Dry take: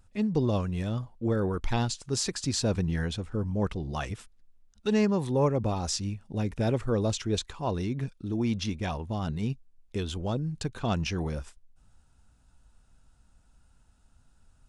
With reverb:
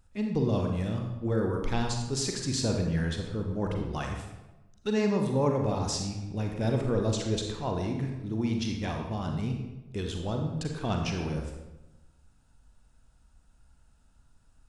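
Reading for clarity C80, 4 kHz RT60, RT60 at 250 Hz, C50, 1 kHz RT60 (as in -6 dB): 6.0 dB, 0.75 s, 1.3 s, 3.5 dB, 1.0 s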